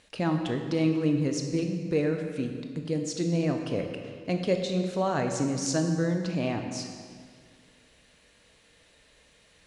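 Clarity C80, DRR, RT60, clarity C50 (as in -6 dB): 6.5 dB, 4.0 dB, 1.9 s, 5.5 dB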